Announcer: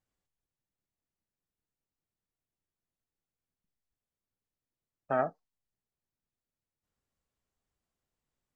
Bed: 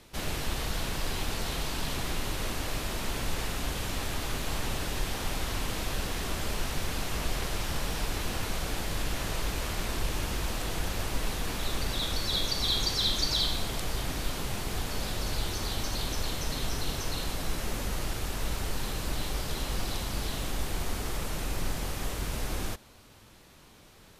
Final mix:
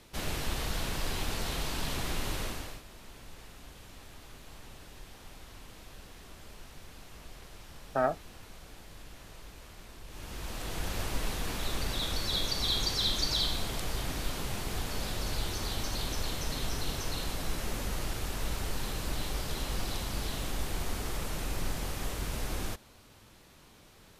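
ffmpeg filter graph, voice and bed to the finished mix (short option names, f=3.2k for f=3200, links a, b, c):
-filter_complex "[0:a]adelay=2850,volume=1dB[a];[1:a]volume=14dB,afade=t=out:st=2.36:d=0.46:silence=0.158489,afade=t=in:st=10.06:d=0.91:silence=0.16788[b];[a][b]amix=inputs=2:normalize=0"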